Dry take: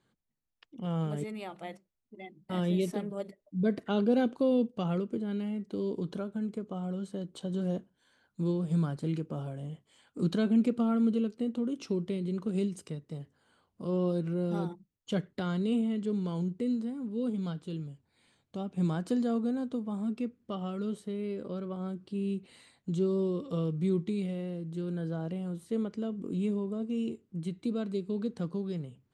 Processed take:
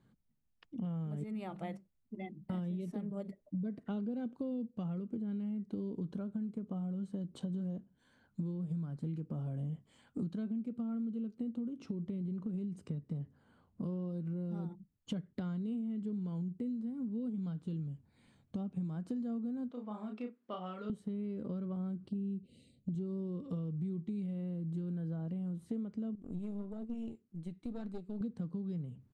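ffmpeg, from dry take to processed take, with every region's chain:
ffmpeg -i in.wav -filter_complex "[0:a]asettb=1/sr,asplit=3[link_01][link_02][link_03];[link_01]atrim=end=11.694[link_04];[link_02]atrim=start=11.69:end=13.84,asetpts=PTS-STARTPTS,afade=type=in:duration=0.004:curve=qsin,afade=type=out:start_time=2.146:duration=0.004:curve=qsin,highshelf=frequency=3700:gain=-7,acompressor=threshold=-33dB:ratio=2:attack=3.2:release=140:knee=1:detection=peak[link_05];[link_03]atrim=start=13.836[link_06];[link_04][link_05]acrossfade=duration=0.004:curve1=hsin:curve2=qsin[link_07];[link_07][link_06]acrossfade=duration=0.004:curve1=qsin:curve2=hsin,asettb=1/sr,asplit=3[link_08][link_09][link_10];[link_08]atrim=end=19.714[link_11];[link_09]atrim=start=19.71:end=20.9,asetpts=PTS-STARTPTS,afade=type=in:duration=0.004:curve=qsin,afade=type=out:start_time=1.186:duration=0.004:curve=qsin,highpass=620,lowpass=4100,asplit=2[link_12][link_13];[link_13]adelay=33,volume=-4.5dB[link_14];[link_12][link_14]amix=inputs=2:normalize=0,atrim=end_sample=52479[link_15];[link_10]atrim=start=20.896[link_16];[link_11][link_15]acrossfade=duration=0.004:curve1=hsin:curve2=qsin[link_17];[link_17][link_16]acrossfade=duration=0.004:curve1=qsin:curve2=hsin,asettb=1/sr,asplit=3[link_18][link_19][link_20];[link_18]atrim=end=22.094[link_21];[link_19]atrim=start=22.09:end=22.95,asetpts=PTS-STARTPTS,afade=type=in:duration=0.004:curve=qsin,afade=type=out:start_time=0.856:duration=0.004:curve=qsin,asuperstop=centerf=1200:order=8:qfactor=0.58,highshelf=frequency=2400:gain=-6.5[link_22];[link_20]atrim=start=22.946[link_23];[link_21][link_22]acrossfade=duration=0.004:curve1=hsin:curve2=qsin[link_24];[link_24][link_23]acrossfade=duration=0.004:curve1=qsin:curve2=hsin,asettb=1/sr,asplit=3[link_25][link_26][link_27];[link_25]atrim=end=26.154[link_28];[link_26]atrim=start=26.15:end=28.21,asetpts=PTS-STARTPTS,afade=type=in:duration=0.004:curve=qsin,afade=type=out:start_time=2.056:duration=0.004:curve=qsin,lowshelf=frequency=370:gain=-8.5,flanger=delay=1.3:depth=6.4:regen=68:speed=1.6:shape=triangular,aeval=exprs='(tanh(79.4*val(0)+0.7)-tanh(0.7))/79.4':channel_layout=same[link_29];[link_27]atrim=start=28.206[link_30];[link_28][link_29]acrossfade=duration=0.004:curve1=hsin:curve2=qsin[link_31];[link_31][link_30]acrossfade=duration=0.004:curve1=qsin:curve2=hsin,firequalizer=gain_entry='entry(230,0);entry(350,-8);entry(3400,-14)':delay=0.05:min_phase=1,acompressor=threshold=-44dB:ratio=12,volume=8.5dB" out.wav

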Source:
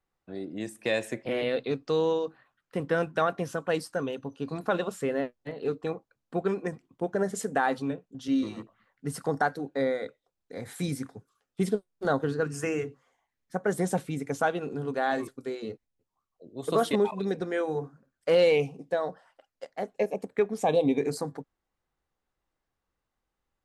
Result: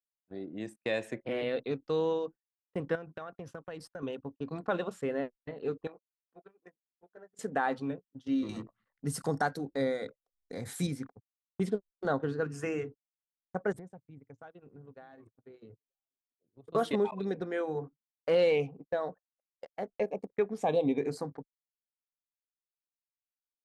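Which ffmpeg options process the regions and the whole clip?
ffmpeg -i in.wav -filter_complex "[0:a]asettb=1/sr,asplit=3[link_01][link_02][link_03];[link_01]atrim=end=2.954[link_04];[link_02]atrim=start=2.95:end=4.03,asetpts=PTS-STARTPTS,afade=type=in:duration=0.004:curve=qsin,afade=type=out:start_time=1.076:duration=0.004:curve=qsin,asubboost=boost=7.5:cutoff=120,acompressor=threshold=-33dB:ratio=10:attack=3.2:release=140:knee=1:detection=peak[link_05];[link_03]atrim=start=4.026[link_06];[link_04][link_05]acrossfade=duration=0.004:curve1=hsin:curve2=qsin[link_07];[link_07][link_06]acrossfade=duration=0.004:curve1=qsin:curve2=hsin,asettb=1/sr,asplit=3[link_08][link_09][link_10];[link_08]atrim=end=5.874[link_11];[link_09]atrim=start=5.87:end=7.39,asetpts=PTS-STARTPTS,afade=type=in:duration=0.004:curve=qsin,afade=type=out:start_time=1.516:duration=0.004:curve=qsin,highpass=frequency=660:poles=1,acompressor=threshold=-41dB:ratio=4:attack=3.2:release=140:knee=1:detection=peak,asplit=2[link_12][link_13];[link_13]adelay=22,volume=-8dB[link_14];[link_12][link_14]amix=inputs=2:normalize=0,atrim=end_sample=67032[link_15];[link_10]atrim=start=7.386[link_16];[link_11][link_15]acrossfade=duration=0.004:curve1=hsin:curve2=qsin[link_17];[link_17][link_16]acrossfade=duration=0.004:curve1=qsin:curve2=hsin,asettb=1/sr,asplit=3[link_18][link_19][link_20];[link_18]atrim=end=8.494[link_21];[link_19]atrim=start=8.49:end=10.87,asetpts=PTS-STARTPTS,afade=type=in:duration=0.004:curve=qsin,afade=type=out:start_time=2.376:duration=0.004:curve=qsin,bass=frequency=250:gain=5,treble=frequency=4000:gain=13,acompressor=mode=upward:threshold=-29dB:ratio=2.5:attack=3.2:release=140:knee=2.83:detection=peak[link_22];[link_20]atrim=start=10.866[link_23];[link_21][link_22]acrossfade=duration=0.004:curve1=hsin:curve2=qsin[link_24];[link_24][link_23]acrossfade=duration=0.004:curve1=qsin:curve2=hsin,asettb=1/sr,asplit=3[link_25][link_26][link_27];[link_25]atrim=end=13.724[link_28];[link_26]atrim=start=13.72:end=16.75,asetpts=PTS-STARTPTS,afade=type=in:duration=0.004:curve=qsin,afade=type=out:start_time=3.026:duration=0.004:curve=qsin,equalizer=frequency=110:width_type=o:width=0.5:gain=14.5,acompressor=threshold=-39dB:ratio=8:attack=3.2:release=140:knee=1:detection=peak,aecho=1:1:936:0.141,atrim=end_sample=133623[link_29];[link_27]atrim=start=16.746[link_30];[link_28][link_29]acrossfade=duration=0.004:curve1=hsin:curve2=qsin[link_31];[link_31][link_30]acrossfade=duration=0.004:curve1=qsin:curve2=hsin,anlmdn=0.01,agate=range=-28dB:threshold=-41dB:ratio=16:detection=peak,lowpass=frequency=4000:poles=1,volume=-4dB" out.wav

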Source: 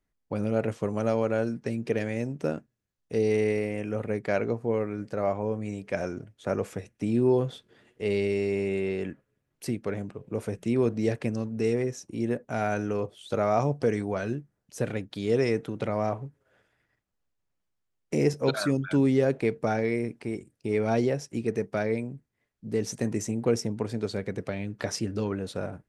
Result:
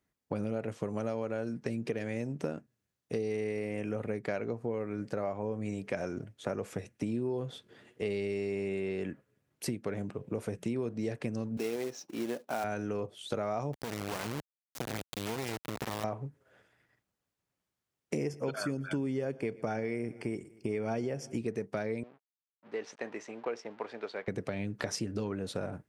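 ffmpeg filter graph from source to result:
ffmpeg -i in.wav -filter_complex "[0:a]asettb=1/sr,asplit=3[link_01][link_02][link_03];[link_01]atrim=end=11.574[link_04];[link_02]atrim=start=11.57:end=12.64,asetpts=PTS-STARTPTS,afade=type=in:duration=0.004:curve=qsin,afade=type=out:start_time=1.066:duration=0.004:curve=qsin,highpass=320,equalizer=frequency=440:width_type=q:width=4:gain=-4,equalizer=frequency=820:width_type=q:width=4:gain=4,equalizer=frequency=1900:width_type=q:width=4:gain=-5,lowpass=frequency=5500:width=0.5412,lowpass=frequency=5500:width=1.3066,acrusher=bits=3:mode=log:mix=0:aa=0.000001[link_05];[link_03]atrim=start=12.636[link_06];[link_04][link_05]acrossfade=duration=0.004:curve1=hsin:curve2=qsin[link_07];[link_07][link_06]acrossfade=duration=0.004:curve1=qsin:curve2=hsin,asettb=1/sr,asplit=3[link_08][link_09][link_10];[link_08]atrim=end=13.734[link_11];[link_09]atrim=start=13.73:end=16.04,asetpts=PTS-STARTPTS,afade=type=in:duration=0.004:curve=qsin,afade=type=out:start_time=2.306:duration=0.004:curve=qsin,acompressor=threshold=-29dB:ratio=8:attack=3.2:release=140:knee=1:detection=peak,aeval=exprs='val(0)+0.00224*(sin(2*PI*50*n/s)+sin(2*PI*2*50*n/s)/2+sin(2*PI*3*50*n/s)/3+sin(2*PI*4*50*n/s)/4+sin(2*PI*5*50*n/s)/5)':channel_layout=same,acrusher=bits=3:dc=4:mix=0:aa=0.000001[link_12];[link_10]atrim=start=16.036[link_13];[link_11][link_12]acrossfade=duration=0.004:curve1=hsin:curve2=qsin[link_14];[link_14][link_13]acrossfade=duration=0.004:curve1=qsin:curve2=hsin,asettb=1/sr,asplit=3[link_15][link_16][link_17];[link_15]atrim=end=18.174[link_18];[link_16]atrim=start=18.17:end=21.38,asetpts=PTS-STARTPTS,afade=type=in:duration=0.004:curve=qsin,afade=type=out:start_time=3.206:duration=0.004:curve=qsin,asuperstop=centerf=3900:order=20:qfactor=5.9,aecho=1:1:119|238|357|476:0.0631|0.036|0.0205|0.0117,atrim=end_sample=141561[link_19];[link_17]atrim=start=21.376[link_20];[link_18][link_19]acrossfade=duration=0.004:curve1=hsin:curve2=qsin[link_21];[link_21][link_20]acrossfade=duration=0.004:curve1=qsin:curve2=hsin,asettb=1/sr,asplit=3[link_22][link_23][link_24];[link_22]atrim=end=22.034[link_25];[link_23]atrim=start=22.03:end=24.28,asetpts=PTS-STARTPTS,afade=type=in:duration=0.004:curve=qsin,afade=type=out:start_time=2.246:duration=0.004:curve=qsin,aemphasis=mode=reproduction:type=cd,aeval=exprs='sgn(val(0))*max(abs(val(0))-0.00211,0)':channel_layout=same,highpass=710,lowpass=3300[link_26];[link_24]atrim=start=24.276[link_27];[link_25][link_26]acrossfade=duration=0.004:curve1=hsin:curve2=qsin[link_28];[link_28][link_27]acrossfade=duration=0.004:curve1=qsin:curve2=hsin,highpass=78,acompressor=threshold=-33dB:ratio=6,volume=2dB" out.wav

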